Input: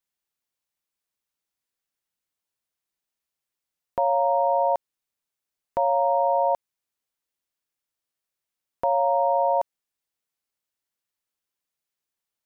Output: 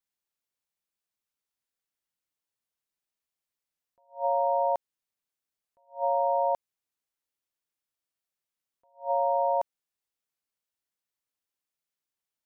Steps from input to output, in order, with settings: attacks held to a fixed rise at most 230 dB/s; trim -4 dB

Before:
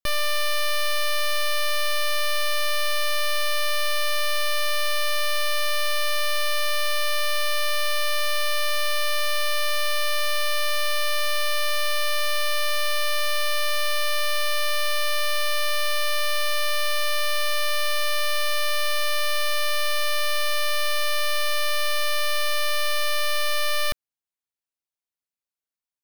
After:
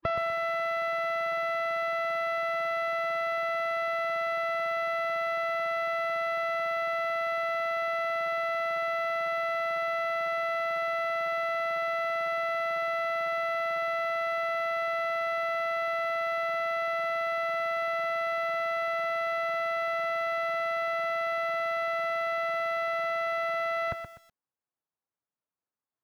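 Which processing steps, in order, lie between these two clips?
formant-preserving pitch shift +2 st; Chebyshev band-pass 110–1200 Hz, order 2; bit-crushed delay 124 ms, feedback 35%, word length 10-bit, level -8 dB; trim +6 dB

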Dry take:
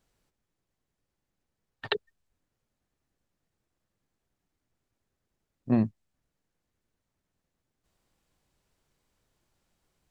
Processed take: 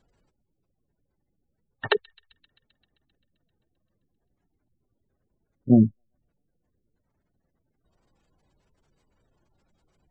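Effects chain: low-pass that closes with the level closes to 2.9 kHz; spectral gate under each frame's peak -20 dB strong; feedback echo behind a high-pass 131 ms, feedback 73%, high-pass 3.6 kHz, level -22 dB; trim +8 dB

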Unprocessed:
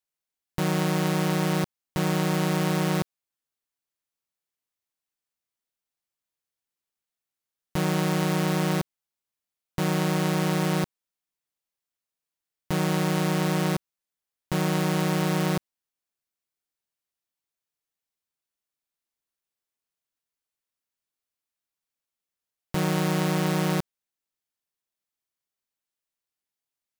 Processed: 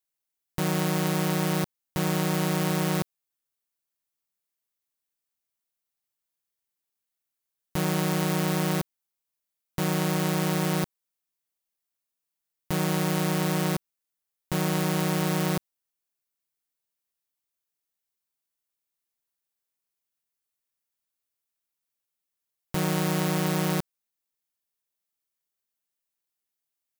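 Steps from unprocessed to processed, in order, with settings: treble shelf 9 kHz +8 dB; trim -1.5 dB

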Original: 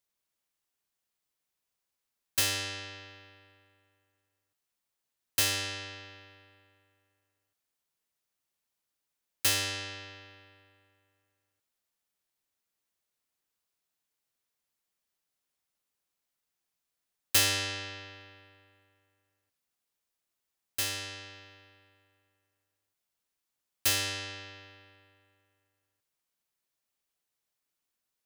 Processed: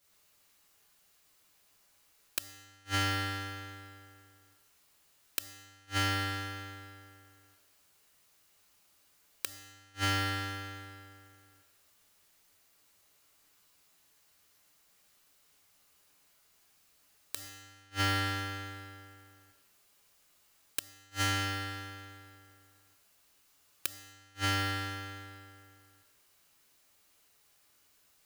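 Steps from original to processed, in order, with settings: two-slope reverb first 0.69 s, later 1.9 s, DRR -9 dB; inverted gate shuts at -20 dBFS, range -40 dB; saturation -30 dBFS, distortion -14 dB; trim +8.5 dB

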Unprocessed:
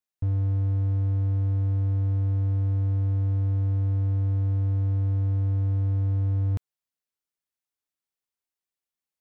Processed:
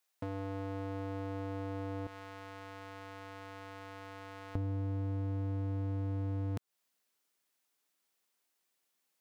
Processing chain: high-pass 450 Hz 12 dB/octave, from 2.07 s 1.2 kHz, from 4.55 s 190 Hz; compression 5:1, threshold -44 dBFS, peak gain reduction 11 dB; trim +10.5 dB

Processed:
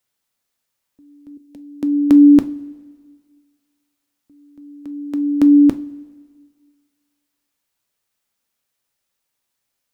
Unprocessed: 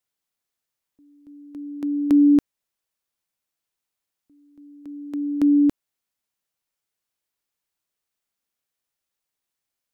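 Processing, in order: 1.37–1.83 s: static phaser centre 320 Hz, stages 6; on a send: reverberation, pre-delay 3 ms, DRR 9 dB; on the sum: trim +7 dB

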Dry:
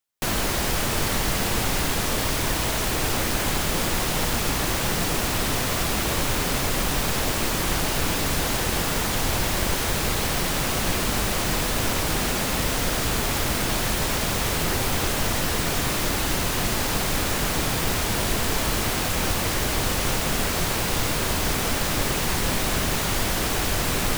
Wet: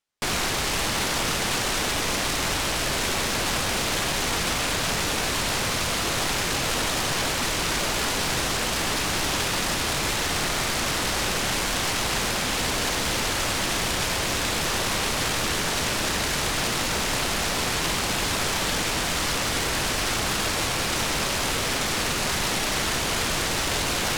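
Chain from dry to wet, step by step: integer overflow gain 20 dB; distance through air 51 m; trim +3.5 dB

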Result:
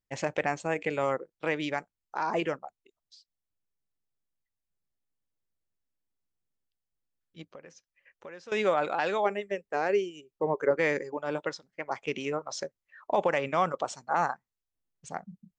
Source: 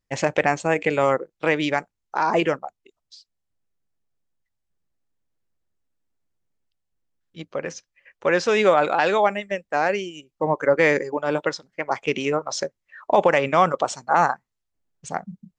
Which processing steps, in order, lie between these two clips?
7.51–8.52 s: compression 2.5:1, threshold -42 dBFS, peak gain reduction 17.5 dB; 9.25–10.71 s: peaking EQ 410 Hz +12 dB 0.33 oct; trim -9 dB

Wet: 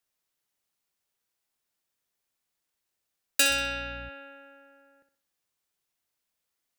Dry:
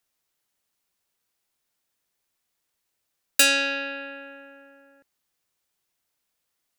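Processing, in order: flutter echo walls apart 10.9 m, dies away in 0.42 s; 3.49–4.08 s: mains buzz 60 Hz, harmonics 4, -39 dBFS -8 dB/octave; trim -5 dB

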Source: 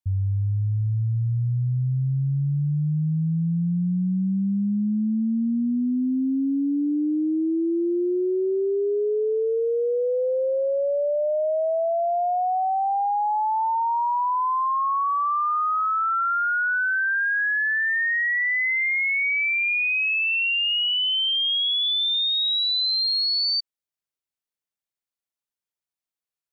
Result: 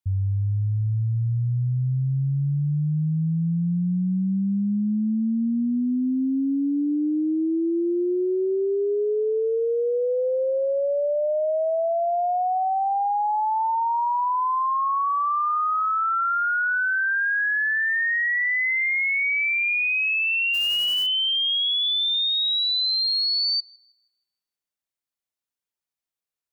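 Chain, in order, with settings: 20.53–21.05 s: formants flattened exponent 0.3; band-passed feedback delay 159 ms, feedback 63%, band-pass 1.7 kHz, level -22 dB

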